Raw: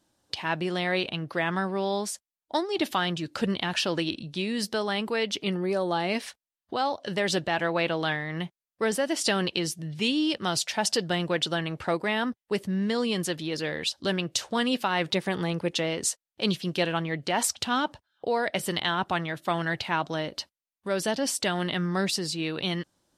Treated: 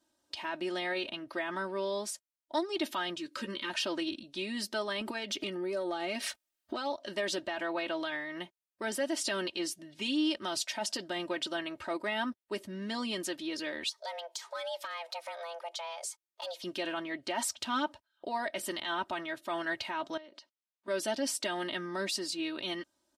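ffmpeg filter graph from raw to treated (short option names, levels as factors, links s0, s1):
-filter_complex "[0:a]asettb=1/sr,asplit=3[s0][s1][s2];[s0]atrim=end=3.174[s3];[s1]atrim=start=3.17:end=3.7,asetpts=PTS-STARTPTS,afade=t=in:d=0.004:c=qsin,afade=t=out:st=0.526:d=0.004:c=qsin,asuperstop=centerf=740:order=8:qfactor=2.2,lowshelf=f=94:g=-11.5,asplit=2[s4][s5];[s5]adelay=14,volume=0.282[s6];[s4][s6]amix=inputs=2:normalize=0,atrim=end_sample=23373[s7];[s2]atrim=start=3.696[s8];[s3][s7]acrossfade=d=0.004:c1=hsin:c2=qsin[s9];[s9][s8]acrossfade=d=0.004:c1=qsin:c2=hsin,asettb=1/sr,asplit=3[s10][s11][s12];[s10]atrim=end=5.014[s13];[s11]atrim=start=5.01:end=6.78,asetpts=PTS-STARTPTS,afade=t=in:d=0.004:c=qsin,afade=t=out:st=1.766:d=0.004:c=qsin,bandreject=f=1000:w=8.5,acompressor=threshold=0.0141:ratio=10:attack=3.2:release=140:knee=1:detection=peak,aeval=exprs='0.106*sin(PI/2*2.51*val(0)/0.106)':c=same[s14];[s12]atrim=start=6.776[s15];[s13][s14]acrossfade=d=0.004:c1=hsin:c2=qsin[s16];[s16][s15]acrossfade=d=0.004:c1=qsin:c2=hsin,asettb=1/sr,asplit=3[s17][s18][s19];[s17]atrim=end=13.894[s20];[s18]atrim=start=13.89:end=16.64,asetpts=PTS-STARTPTS,afade=t=in:d=0.004:c=qsin,afade=t=out:st=2.746:d=0.004:c=qsin,acompressor=threshold=0.02:ratio=2.5:attack=3.2:release=140:knee=1:detection=peak,afreqshift=340,asoftclip=type=hard:threshold=0.0562[s21];[s19]atrim=start=16.636[s22];[s20][s21]acrossfade=d=0.004:c1=hsin:c2=qsin[s23];[s23][s22]acrossfade=d=0.004:c1=qsin:c2=hsin,asettb=1/sr,asplit=3[s24][s25][s26];[s24]atrim=end=20.174[s27];[s25]atrim=start=20.17:end=20.88,asetpts=PTS-STARTPTS,afade=t=in:d=0.004:c=qsin,afade=t=out:st=0.706:d=0.004:c=qsin,acompressor=threshold=0.00708:ratio=8:attack=3.2:release=140:knee=1:detection=peak,highpass=210,lowpass=6400[s28];[s26]atrim=start=20.876[s29];[s27][s28]acrossfade=d=0.004:c1=hsin:c2=qsin[s30];[s30][s29]acrossfade=d=0.004:c1=qsin:c2=hsin,alimiter=limit=0.119:level=0:latency=1:release=17,lowshelf=f=130:g=-11,aecho=1:1:3.2:0.84,volume=0.447"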